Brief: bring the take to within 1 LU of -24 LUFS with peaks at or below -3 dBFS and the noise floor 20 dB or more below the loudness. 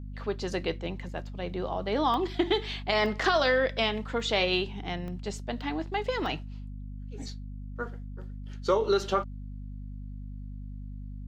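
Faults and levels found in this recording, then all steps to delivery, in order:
dropouts 6; longest dropout 1.1 ms; hum 50 Hz; harmonics up to 250 Hz; hum level -37 dBFS; loudness -29.5 LUFS; peak -11.0 dBFS; loudness target -24.0 LUFS
-> interpolate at 2.14/3.06/4.2/5.08/5.61/6.26, 1.1 ms; notches 50/100/150/200/250 Hz; gain +5.5 dB

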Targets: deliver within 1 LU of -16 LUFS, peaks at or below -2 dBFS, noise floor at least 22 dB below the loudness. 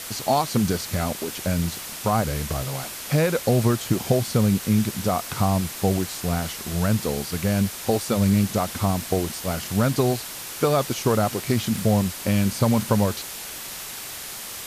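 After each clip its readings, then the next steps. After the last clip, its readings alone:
noise floor -35 dBFS; noise floor target -46 dBFS; loudness -23.5 LUFS; peak -6.0 dBFS; loudness target -16.0 LUFS
-> denoiser 11 dB, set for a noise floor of -35 dBFS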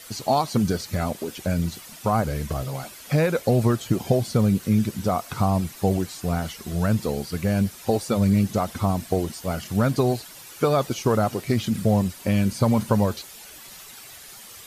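noise floor -44 dBFS; noise floor target -46 dBFS
-> denoiser 6 dB, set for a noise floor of -44 dBFS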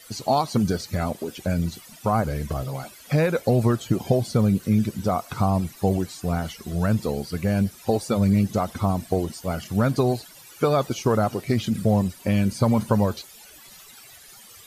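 noise floor -47 dBFS; loudness -24.0 LUFS; peak -6.5 dBFS; loudness target -16.0 LUFS
-> gain +8 dB; limiter -2 dBFS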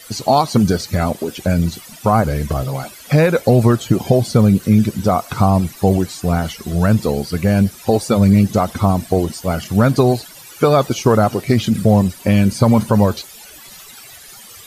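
loudness -16.0 LUFS; peak -2.0 dBFS; noise floor -39 dBFS

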